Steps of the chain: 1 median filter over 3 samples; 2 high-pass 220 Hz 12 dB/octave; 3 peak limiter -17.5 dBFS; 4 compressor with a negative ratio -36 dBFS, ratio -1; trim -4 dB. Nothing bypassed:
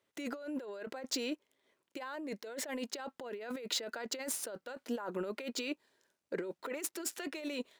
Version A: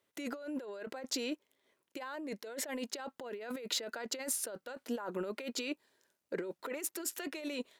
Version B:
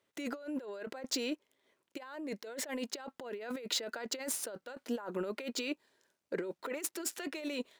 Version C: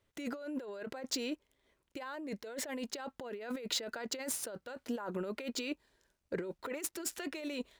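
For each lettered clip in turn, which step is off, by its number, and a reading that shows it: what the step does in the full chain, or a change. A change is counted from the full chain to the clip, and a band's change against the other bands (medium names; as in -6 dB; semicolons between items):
1, 8 kHz band +1.5 dB; 3, 1 kHz band -2.0 dB; 2, 125 Hz band +4.0 dB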